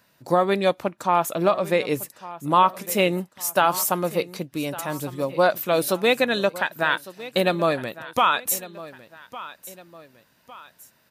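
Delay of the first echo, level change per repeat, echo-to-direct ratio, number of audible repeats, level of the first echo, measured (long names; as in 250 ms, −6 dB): 1,156 ms, −7.5 dB, −16.5 dB, 2, −17.0 dB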